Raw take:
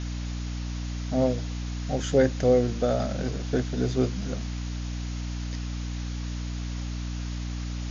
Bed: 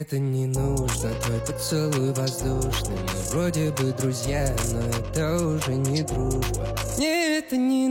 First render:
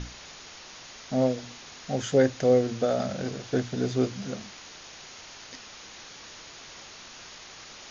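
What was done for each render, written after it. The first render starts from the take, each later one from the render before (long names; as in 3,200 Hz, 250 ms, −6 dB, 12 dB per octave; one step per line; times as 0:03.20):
mains-hum notches 60/120/180/240/300 Hz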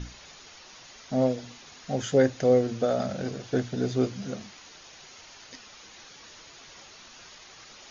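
broadband denoise 6 dB, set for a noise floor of −46 dBFS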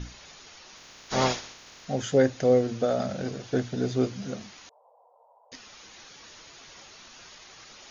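0:00.76–0:01.84: ceiling on every frequency bin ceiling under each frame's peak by 27 dB
0:04.69–0:05.52: Chebyshev band-pass filter 470–1,000 Hz, order 4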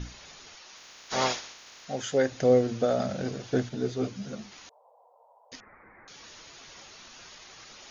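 0:00.55–0:02.32: low-shelf EQ 340 Hz −10.5 dB
0:03.69–0:04.52: string-ensemble chorus
0:05.60–0:06.08: Butterworth low-pass 2,200 Hz 96 dB per octave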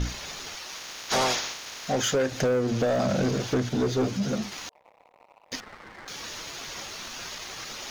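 downward compressor 12 to 1, threshold −27 dBFS, peak gain reduction 12 dB
leveller curve on the samples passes 3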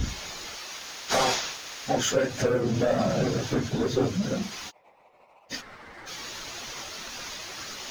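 random phases in long frames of 50 ms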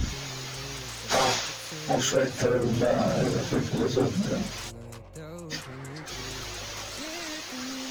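mix in bed −17 dB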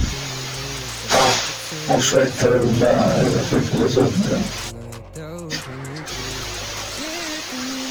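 level +8.5 dB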